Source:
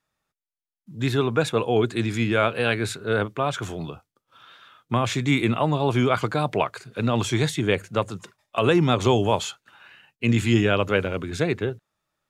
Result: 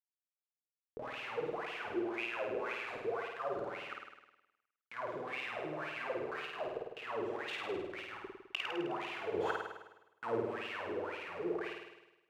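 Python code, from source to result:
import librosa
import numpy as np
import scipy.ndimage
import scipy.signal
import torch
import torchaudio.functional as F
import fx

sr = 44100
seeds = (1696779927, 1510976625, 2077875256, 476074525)

y = scipy.signal.sosfilt(scipy.signal.butter(4, 56.0, 'highpass', fs=sr, output='sos'), x)
y = fx.schmitt(y, sr, flips_db=-32.0)
y = fx.over_compress(y, sr, threshold_db=-29.0, ratio=-0.5)
y = fx.leveller(y, sr, passes=2, at=(9.34, 10.4))
y = fx.wah_lfo(y, sr, hz=1.9, low_hz=360.0, high_hz=2800.0, q=9.8)
y = fx.room_flutter(y, sr, wall_m=8.9, rt60_s=1.0)
y = F.gain(torch.from_numpy(y), 5.0).numpy()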